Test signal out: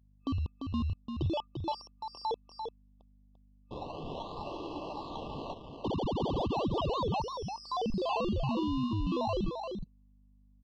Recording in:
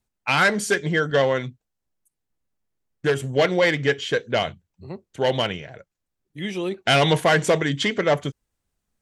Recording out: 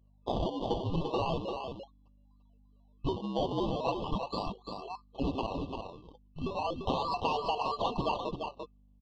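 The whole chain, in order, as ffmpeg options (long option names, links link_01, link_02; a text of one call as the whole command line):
ffmpeg -i in.wav -af "afftfilt=real='real(if(lt(b,736),b+184*(1-2*mod(floor(b/184),2)),b),0)':imag='imag(if(lt(b,736),b+184*(1-2*mod(floor(b/184),2)),b),0)':win_size=2048:overlap=0.75,acrusher=samples=23:mix=1:aa=0.000001:lfo=1:lforange=23:lforate=0.37,lowpass=frequency=3900:width=0.5412,lowpass=frequency=3900:width=1.3066,afftfilt=real='re*(1-between(b*sr/4096,1200,2600))':imag='im*(1-between(b*sr/4096,1200,2600))':win_size=4096:overlap=0.75,aeval=exprs='val(0)+0.00158*(sin(2*PI*50*n/s)+sin(2*PI*2*50*n/s)/2+sin(2*PI*3*50*n/s)/3+sin(2*PI*4*50*n/s)/4+sin(2*PI*5*50*n/s)/5)':channel_layout=same,acompressor=threshold=-22dB:ratio=8,aecho=1:1:344:0.501,volume=-6dB" out.wav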